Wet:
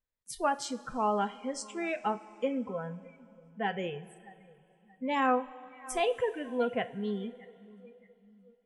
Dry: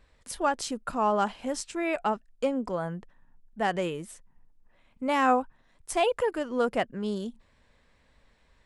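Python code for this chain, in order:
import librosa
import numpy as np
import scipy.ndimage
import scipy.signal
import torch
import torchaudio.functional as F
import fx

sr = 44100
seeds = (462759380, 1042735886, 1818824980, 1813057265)

y = fx.echo_feedback(x, sr, ms=624, feedback_pct=54, wet_db=-18.0)
y = fx.noise_reduce_blind(y, sr, reduce_db=27)
y = fx.rev_double_slope(y, sr, seeds[0], early_s=0.26, late_s=3.0, knee_db=-18, drr_db=9.5)
y = F.gain(torch.from_numpy(y), -4.0).numpy()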